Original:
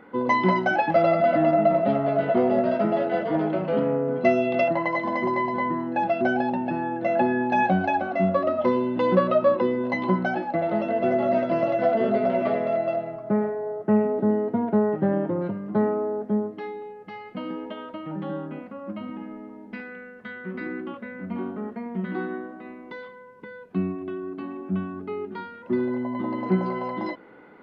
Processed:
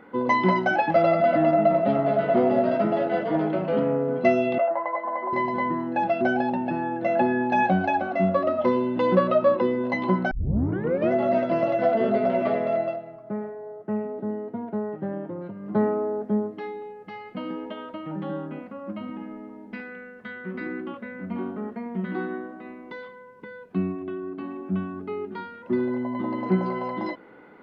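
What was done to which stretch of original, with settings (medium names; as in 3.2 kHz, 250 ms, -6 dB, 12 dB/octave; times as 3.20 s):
1.72–2.13 s: echo throw 240 ms, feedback 75%, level -8.5 dB
4.58–5.33 s: Butterworth band-pass 900 Hz, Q 0.87
10.31 s: tape start 0.80 s
12.82–15.72 s: dip -8 dB, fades 0.17 s
24.02–24.45 s: distance through air 80 m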